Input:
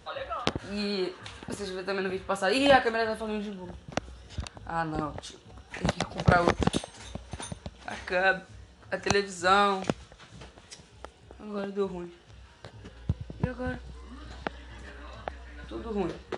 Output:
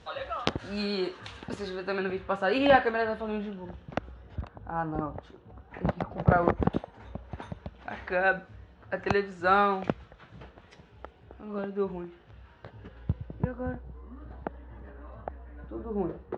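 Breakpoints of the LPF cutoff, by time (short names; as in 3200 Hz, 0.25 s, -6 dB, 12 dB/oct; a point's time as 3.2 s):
1.26 s 5800 Hz
2.32 s 2600 Hz
3.88 s 2600 Hz
4.37 s 1300 Hz
6.97 s 1300 Hz
7.65 s 2200 Hz
13.1 s 2200 Hz
13.79 s 1000 Hz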